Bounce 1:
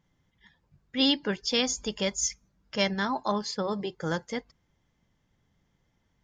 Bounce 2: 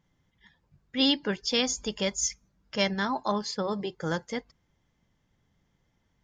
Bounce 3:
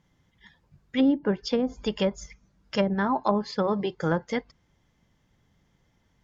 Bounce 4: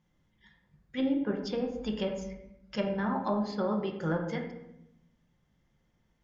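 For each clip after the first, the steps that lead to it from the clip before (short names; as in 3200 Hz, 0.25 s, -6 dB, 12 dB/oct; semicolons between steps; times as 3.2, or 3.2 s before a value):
nothing audible
added harmonics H 3 -21 dB, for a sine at -12.5 dBFS; treble ducked by the level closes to 500 Hz, closed at -24 dBFS; gain +7.5 dB
reverb RT60 0.85 s, pre-delay 5 ms, DRR 1.5 dB; gain -8.5 dB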